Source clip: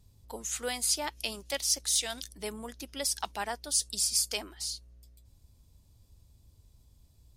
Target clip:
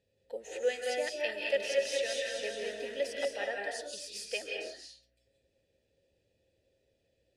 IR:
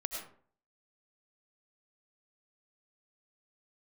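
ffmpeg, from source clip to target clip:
-filter_complex "[0:a]asplit=3[a][b][c];[a]bandpass=f=530:t=q:w=8,volume=0dB[d];[b]bandpass=f=1.84k:t=q:w=8,volume=-6dB[e];[c]bandpass=f=2.48k:t=q:w=8,volume=-9dB[f];[d][e][f]amix=inputs=3:normalize=0,asettb=1/sr,asplit=3[g][h][i];[g]atrim=end=0.974[j];[h]atrim=start=0.97:end=3.28,asetpts=PTS-STARTPTS,afade=t=in:d=0.004:c=qsin,afade=t=out:st=2.306:d=0.004:c=qsin,aecho=1:1:220|407|566|701.1|815.9:0.631|0.398|0.251|0.158|0.1,atrim=end_sample=101871[k];[i]atrim=start=3.276[l];[j][k]acrossfade=d=0.004:c1=hsin:c2=qsin[m];[m][l]acrossfade=d=0.004:c1=qsin:c2=hsin[n];[1:a]atrim=start_sample=2205,afade=t=out:st=0.26:d=0.01,atrim=end_sample=11907,asetrate=25137,aresample=44100[o];[n][o]afir=irnorm=-1:irlink=0,volume=8dB"

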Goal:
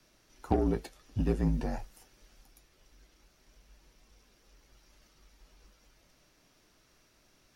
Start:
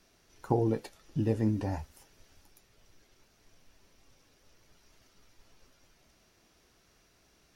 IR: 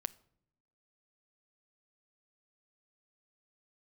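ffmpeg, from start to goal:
-af "aeval=exprs='0.211*(cos(1*acos(clip(val(0)/0.211,-1,1)))-cos(1*PI/2))+0.00841*(cos(8*acos(clip(val(0)/0.211,-1,1)))-cos(8*PI/2))':c=same,afreqshift=-51"

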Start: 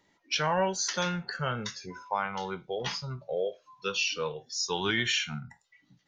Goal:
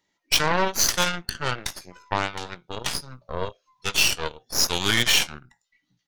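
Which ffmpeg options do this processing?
-filter_complex "[0:a]highshelf=f=2k:g=8,asplit=2[a][b];[b]adelay=17,volume=-11dB[c];[a][c]amix=inputs=2:normalize=0,aeval=exprs='0.316*(cos(1*acos(clip(val(0)/0.316,-1,1)))-cos(1*PI/2))+0.0251*(cos(3*acos(clip(val(0)/0.316,-1,1)))-cos(3*PI/2))+0.0447*(cos(5*acos(clip(val(0)/0.316,-1,1)))-cos(5*PI/2))+0.0562*(cos(7*acos(clip(val(0)/0.316,-1,1)))-cos(7*PI/2))+0.0355*(cos(8*acos(clip(val(0)/0.316,-1,1)))-cos(8*PI/2))':c=same,volume=3.5dB"

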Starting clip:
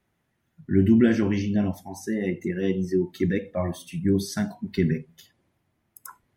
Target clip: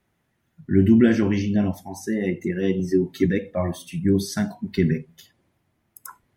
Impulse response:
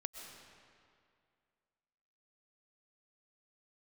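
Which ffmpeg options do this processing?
-filter_complex "[0:a]asettb=1/sr,asplit=3[a][b][c];[a]atrim=end=2.794[d];[b]atrim=start=2.79:end=3.26,asetpts=PTS-STARTPTS,afade=t=in:d=0.004:c=qsin,afade=t=out:st=0.466:d=0.004:c=qsin,aecho=1:1:7.3:0.78,atrim=end_sample=20727[e];[c]atrim=start=3.256[f];[d][e]acrossfade=d=0.004:c1=hsin:c2=qsin[g];[g][f]acrossfade=d=0.004:c1=qsin:c2=hsin,volume=2.5dB"

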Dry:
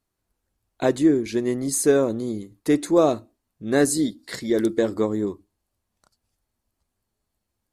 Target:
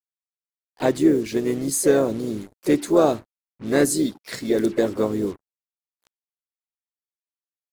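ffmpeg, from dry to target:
-filter_complex "[0:a]acrusher=bits=6:mix=0:aa=0.5,asplit=4[a][b][c][d];[b]asetrate=33038,aresample=44100,atempo=1.33484,volume=-18dB[e];[c]asetrate=52444,aresample=44100,atempo=0.840896,volume=-11dB[f];[d]asetrate=55563,aresample=44100,atempo=0.793701,volume=-14dB[g];[a][e][f][g]amix=inputs=4:normalize=0"

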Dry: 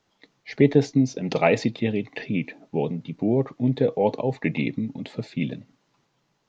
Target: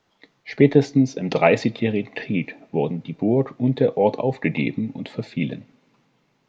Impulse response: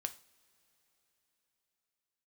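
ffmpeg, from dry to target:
-filter_complex "[0:a]asplit=2[a][b];[1:a]atrim=start_sample=2205,lowpass=4.6k,lowshelf=f=250:g=-8.5[c];[b][c]afir=irnorm=-1:irlink=0,volume=-3.5dB[d];[a][d]amix=inputs=2:normalize=0"

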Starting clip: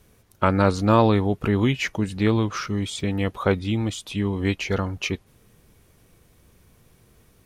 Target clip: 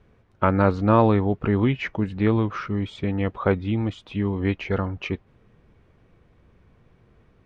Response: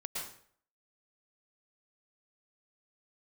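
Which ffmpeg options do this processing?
-af "lowpass=2.2k"

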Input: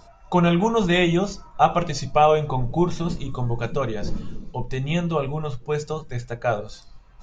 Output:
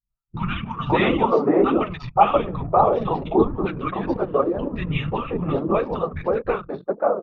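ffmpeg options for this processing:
-filter_complex "[0:a]highpass=f=120:w=0.5412,highpass=f=120:w=1.3066,equalizer=f=340:t=q:w=4:g=7,equalizer=f=520:t=q:w=4:g=3,equalizer=f=1.5k:t=q:w=4:g=-4,lowpass=f=3.2k:w=0.5412,lowpass=f=3.2k:w=1.3066,acompressor=threshold=-40dB:ratio=1.5,afftfilt=real='hypot(re,im)*cos(2*PI*random(0))':imag='hypot(re,im)*sin(2*PI*random(1))':win_size=512:overlap=0.75,flanger=delay=3.3:depth=4.2:regen=29:speed=1.7:shape=triangular,agate=range=-33dB:threshold=-57dB:ratio=3:detection=peak,dynaudnorm=f=220:g=3:m=16dB,equalizer=f=1.2k:t=o:w=0.62:g=9,acrossover=split=180|1300[a][b][c];[c]adelay=50[d];[b]adelay=580[e];[a][e][d]amix=inputs=3:normalize=0,anlmdn=0.631,volume=2.5dB"

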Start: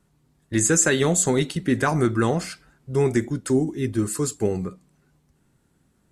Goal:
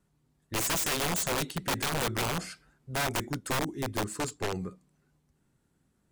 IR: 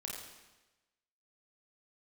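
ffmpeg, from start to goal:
-filter_complex "[0:a]aeval=exprs='(mod(6.68*val(0)+1,2)-1)/6.68':c=same,asplit=3[a][b][c];[a]afade=t=out:st=4.03:d=0.02[d];[b]adynamicsmooth=sensitivity=7:basefreq=5.4k,afade=t=in:st=4.03:d=0.02,afade=t=out:st=4.52:d=0.02[e];[c]afade=t=in:st=4.52:d=0.02[f];[d][e][f]amix=inputs=3:normalize=0,volume=-7.5dB"

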